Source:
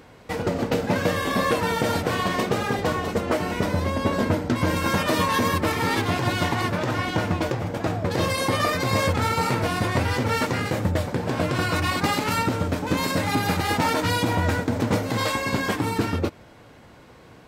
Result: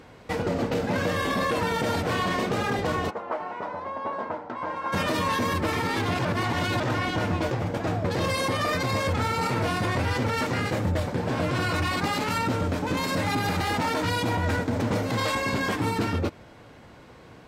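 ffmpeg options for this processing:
-filter_complex "[0:a]asplit=3[a][b][c];[a]afade=t=out:st=3.09:d=0.02[d];[b]bandpass=f=930:t=q:w=2,afade=t=in:st=3.09:d=0.02,afade=t=out:st=4.92:d=0.02[e];[c]afade=t=in:st=4.92:d=0.02[f];[d][e][f]amix=inputs=3:normalize=0,asplit=3[g][h][i];[g]atrim=end=6.252[j];[h]atrim=start=6.248:end=6.802,asetpts=PTS-STARTPTS,areverse[k];[i]atrim=start=6.798[l];[j][k]acrossfade=d=0.004:c1=hsin:c2=hsin[m];[m][l]acrossfade=d=0.004:c1=hsin:c2=hsin,alimiter=limit=-17dB:level=0:latency=1:release=14,highshelf=f=9.7k:g=-7"

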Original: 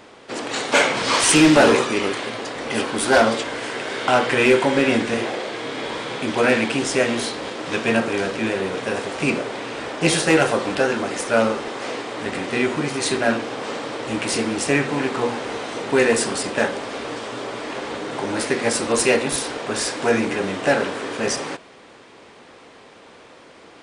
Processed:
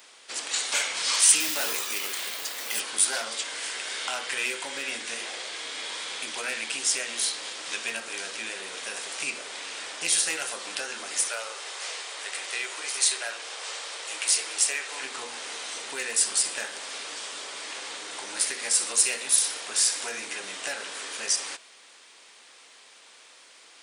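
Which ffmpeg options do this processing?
-filter_complex "[0:a]asettb=1/sr,asplit=3[a][b][c];[a]atrim=end=1.404[d];[b]atrim=start=1.4:end=2.8,asetpts=PTS-STARTPTS,afade=t=in:d=0.004:c=qsin,afade=t=out:st=1.396:d=0.004:c=qsin,acrusher=bits=4:mode=log:mix=0:aa=0.000001[e];[c]atrim=start=2.796[f];[d][e]acrossfade=d=0.004:c1=hsin:c2=qsin[g];[g][f]acrossfade=d=0.004:c1=qsin:c2=hsin,asettb=1/sr,asplit=3[h][i][j];[h]atrim=end=11.284[k];[i]atrim=start=11.28:end=15.02,asetpts=PTS-STARTPTS,afade=t=in:d=0.004:c=qsin,afade=t=out:st=3.736:d=0.004:c=qsin,highpass=f=390:w=0.5412,highpass=f=390:w=1.3066[l];[j]atrim=start=15.016[m];[k][l]acrossfade=d=0.004:c1=hsin:c2=qsin[n];[n][m]acrossfade=d=0.004:c1=qsin:c2=hsin,asettb=1/sr,asplit=3[o][p][q];[o]atrim=end=16.304[r];[p]atrim=start=16.3:end=20.27,asetpts=PTS-STARTPTS,afade=t=in:d=0.004:c=qsin,afade=t=out:st=3.966:d=0.004:c=qsin,aecho=1:1:61|122|183|244|305:0.188|0.0961|0.049|0.025|0.0127,atrim=end_sample=175077[s];[q]atrim=start=20.266[t];[r][s]acrossfade=d=0.004:c1=hsin:c2=qsin[u];[u][t]acrossfade=d=0.004:c1=qsin:c2=hsin,acompressor=threshold=-23dB:ratio=2,aderivative,volume=6dB"

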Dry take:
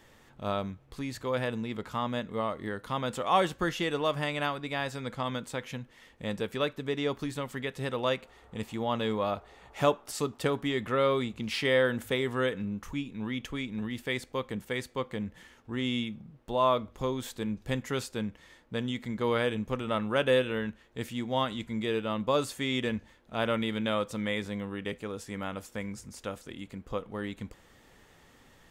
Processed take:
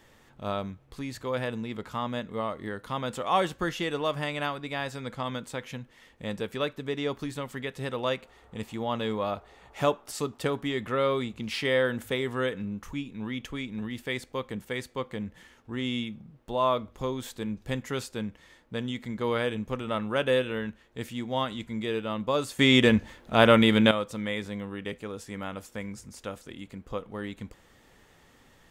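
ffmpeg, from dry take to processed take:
-filter_complex "[0:a]asplit=3[a][b][c];[a]atrim=end=22.592[d];[b]atrim=start=22.588:end=23.912,asetpts=PTS-STARTPTS,volume=11dB[e];[c]atrim=start=23.908[f];[d][e]acrossfade=d=0.004:c1=hsin:c2=hsin[g];[g][f]acrossfade=d=0.004:c1=hsin:c2=hsin"

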